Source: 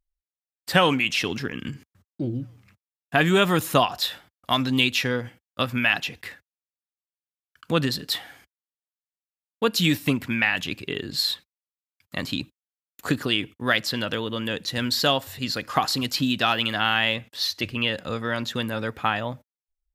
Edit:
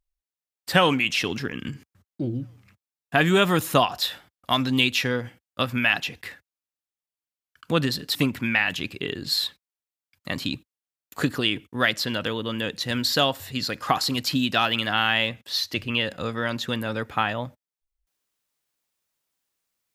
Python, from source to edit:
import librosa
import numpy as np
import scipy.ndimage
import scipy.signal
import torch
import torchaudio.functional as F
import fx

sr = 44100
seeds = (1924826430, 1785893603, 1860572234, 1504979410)

y = fx.edit(x, sr, fx.cut(start_s=8.15, length_s=1.87), tone=tone)